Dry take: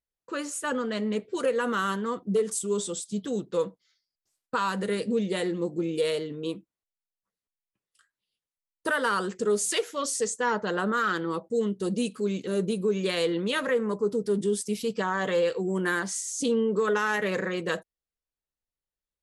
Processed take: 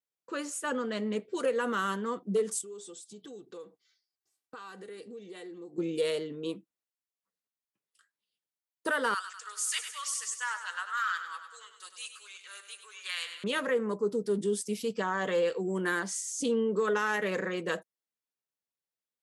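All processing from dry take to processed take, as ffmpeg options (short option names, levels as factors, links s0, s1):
-filter_complex "[0:a]asettb=1/sr,asplit=3[s0][s1][s2];[s0]atrim=end=2.614[s3];[s1]atrim=start=2.61:end=5.78,asetpts=PTS-STARTPTS,afade=t=in:d=0.004:c=qsin,afade=t=out:st=3.166:d=0.004:c=qsin,aecho=1:1:2.6:0.51,atrim=end_sample=139797,acompressor=threshold=0.00631:ratio=3:attack=3.2:release=140:knee=1:detection=peak[s4];[s2]atrim=start=5.776[s5];[s3][s4]acrossfade=d=0.004:c1=hsin:c2=qsin[s6];[s6][s5]acrossfade=d=0.004:c1=qsin:c2=hsin,asettb=1/sr,asplit=3[s7][s8][s9];[s7]atrim=end=9.144[s10];[s8]atrim=start=9.14:end=13.44,asetpts=PTS-STARTPTS,afade=t=in:d=0.004:c=qsin,afade=t=out:st=4.296:d=0.004:c=qsin,highpass=f=1200:w=0.5412,highpass=f=1200:w=1.3066,aecho=1:1:99|198|297|396|495|594|693:0.316|0.187|0.11|0.0649|0.0383|0.0226|0.0133,atrim=end_sample=189630[s11];[s9]atrim=start=13.436[s12];[s10][s11]acrossfade=d=0.004:c1=hsin:c2=qsin[s13];[s13][s12]acrossfade=d=0.004:c1=qsin:c2=hsin,highpass=160,adynamicequalizer=threshold=0.00141:dfrequency=4000:dqfactor=6.1:tfrequency=4000:tqfactor=6.1:attack=5:release=100:ratio=0.375:range=2.5:mode=cutabove:tftype=bell,volume=0.708"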